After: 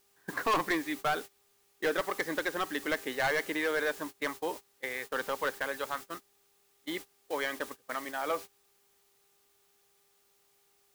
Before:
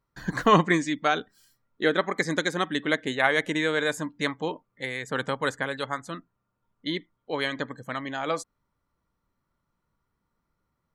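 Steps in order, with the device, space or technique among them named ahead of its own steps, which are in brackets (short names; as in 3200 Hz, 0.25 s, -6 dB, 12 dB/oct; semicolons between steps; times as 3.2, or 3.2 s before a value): aircraft radio (BPF 370–2600 Hz; hard clip -21.5 dBFS, distortion -8 dB; buzz 400 Hz, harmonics 3, -54 dBFS -6 dB/oct; white noise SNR 13 dB; gate -37 dBFS, range -21 dB); gain -2.5 dB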